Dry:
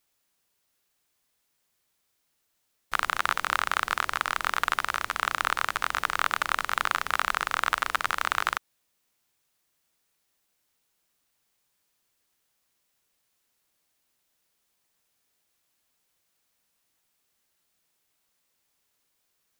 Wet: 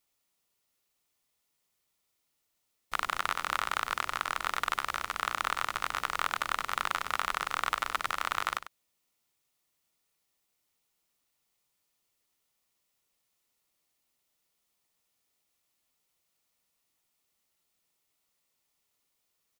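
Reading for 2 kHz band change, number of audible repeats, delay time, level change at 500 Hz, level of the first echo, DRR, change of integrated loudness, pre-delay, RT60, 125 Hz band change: -6.5 dB, 1, 97 ms, -4.0 dB, -12.5 dB, no reverb, -4.5 dB, no reverb, no reverb, -3.5 dB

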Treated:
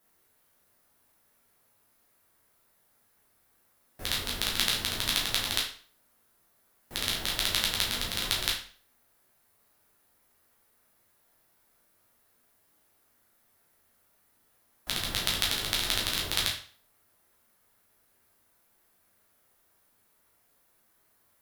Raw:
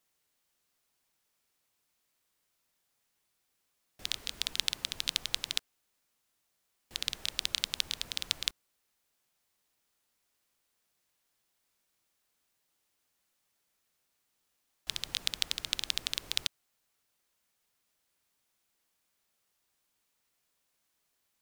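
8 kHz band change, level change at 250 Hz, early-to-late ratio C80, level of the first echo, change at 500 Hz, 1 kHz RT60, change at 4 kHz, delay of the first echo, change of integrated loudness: +5.5 dB, +14.0 dB, 10.5 dB, no echo, +13.5 dB, 0.45 s, +4.5 dB, no echo, +5.0 dB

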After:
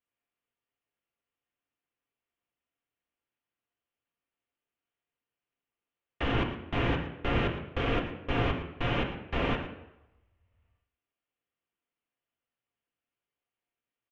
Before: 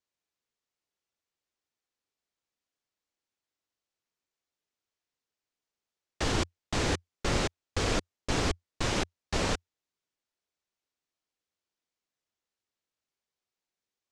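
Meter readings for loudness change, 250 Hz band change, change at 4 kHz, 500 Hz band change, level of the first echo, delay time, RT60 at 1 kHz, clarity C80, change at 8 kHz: 0.0 dB, +1.5 dB, -4.0 dB, +0.5 dB, -13.5 dB, 113 ms, 0.90 s, 9.0 dB, under -25 dB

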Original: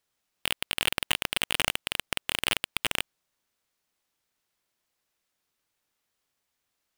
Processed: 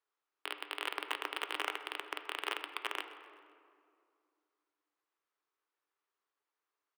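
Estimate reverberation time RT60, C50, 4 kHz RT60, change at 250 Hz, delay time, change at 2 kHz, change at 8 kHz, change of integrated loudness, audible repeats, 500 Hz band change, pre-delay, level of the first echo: 2.3 s, 9.5 dB, 1.3 s, -10.5 dB, 128 ms, -8.5 dB, -18.5 dB, -10.5 dB, 2, -6.0 dB, 4 ms, -20.5 dB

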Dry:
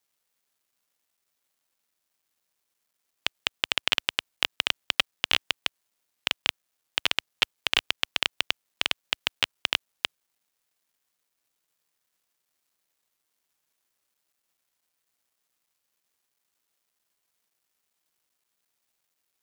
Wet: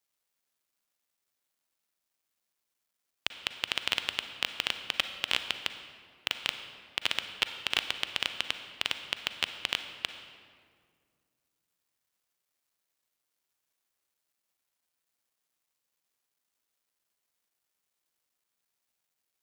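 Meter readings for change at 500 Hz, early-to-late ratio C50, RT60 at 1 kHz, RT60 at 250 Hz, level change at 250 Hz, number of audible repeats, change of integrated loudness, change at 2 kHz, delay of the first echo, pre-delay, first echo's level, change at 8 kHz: -4.5 dB, 9.0 dB, 1.8 s, 2.6 s, -4.0 dB, no echo, -4.5 dB, -4.5 dB, no echo, 36 ms, no echo, -4.5 dB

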